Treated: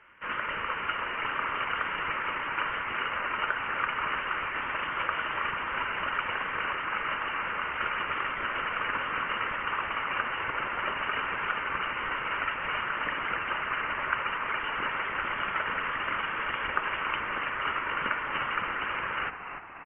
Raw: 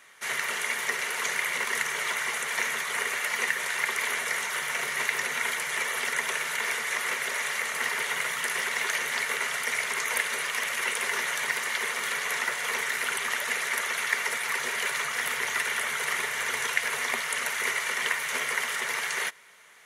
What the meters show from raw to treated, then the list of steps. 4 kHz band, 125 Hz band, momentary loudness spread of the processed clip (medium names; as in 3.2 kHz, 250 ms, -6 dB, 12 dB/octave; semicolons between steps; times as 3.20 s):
-6.0 dB, no reading, 1 LU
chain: distance through air 200 m; frequency-shifting echo 294 ms, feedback 54%, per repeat +110 Hz, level -9 dB; frequency inversion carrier 3.3 kHz